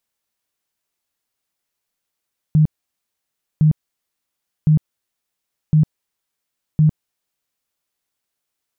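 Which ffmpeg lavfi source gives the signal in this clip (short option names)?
-f lavfi -i "aevalsrc='0.355*sin(2*PI*154*mod(t,1.06))*lt(mod(t,1.06),16/154)':d=5.3:s=44100"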